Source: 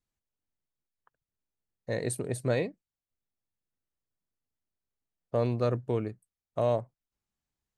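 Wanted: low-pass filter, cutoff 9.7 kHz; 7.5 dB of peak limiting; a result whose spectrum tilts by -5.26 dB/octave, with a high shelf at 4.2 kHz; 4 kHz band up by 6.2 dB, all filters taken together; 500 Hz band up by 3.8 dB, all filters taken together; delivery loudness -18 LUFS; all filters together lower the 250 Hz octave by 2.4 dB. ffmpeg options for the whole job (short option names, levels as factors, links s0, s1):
-af "lowpass=9700,equalizer=f=250:t=o:g=-5.5,equalizer=f=500:t=o:g=5.5,equalizer=f=4000:t=o:g=4,highshelf=f=4200:g=5.5,volume=5.62,alimiter=limit=0.501:level=0:latency=1"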